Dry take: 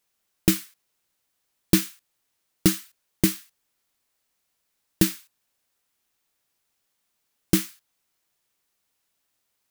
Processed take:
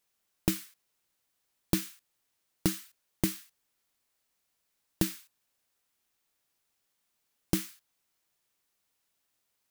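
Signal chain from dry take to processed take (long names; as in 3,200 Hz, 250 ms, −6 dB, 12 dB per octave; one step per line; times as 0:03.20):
downward compressor 3 to 1, threshold −22 dBFS, peak gain reduction 8 dB
level −3 dB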